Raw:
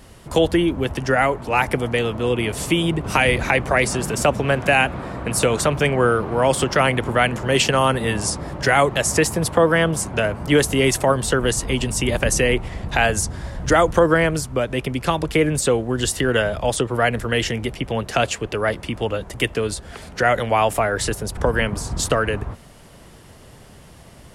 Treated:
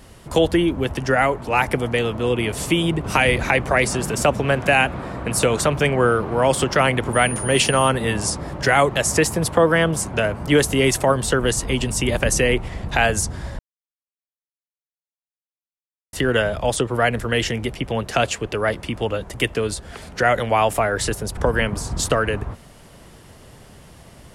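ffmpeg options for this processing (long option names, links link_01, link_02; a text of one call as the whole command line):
ffmpeg -i in.wav -filter_complex "[0:a]asettb=1/sr,asplit=3[link_01][link_02][link_03];[link_01]atrim=end=7.134[link_04];[link_02]atrim=start=7.13:end=7.89,asetpts=PTS-STARTPTS,afade=type=in:duration=0.004:curve=qsin,afade=type=out:start_time=0.756:duration=0.004:curve=qsin,aeval=exprs='val(0)+0.0398*sin(2*PI*9500*n/s)':channel_layout=same[link_05];[link_03]atrim=start=7.886[link_06];[link_04][link_05]acrossfade=duration=0.004:curve1=hsin:curve2=qsin[link_07];[link_07][link_06]acrossfade=duration=0.004:curve1=qsin:curve2=hsin,asplit=3[link_08][link_09][link_10];[link_08]atrim=end=13.59,asetpts=PTS-STARTPTS,afade=type=out:start_time=13.586:duration=0.004:curve=hsin[link_11];[link_09]atrim=start=13.59:end=16.13,asetpts=PTS-STARTPTS,volume=0[link_12];[link_10]atrim=start=16.13,asetpts=PTS-STARTPTS,afade=type=in:duration=0.004:curve=hsin[link_13];[link_11][link_12][link_13]concat=n=3:v=0:a=1" out.wav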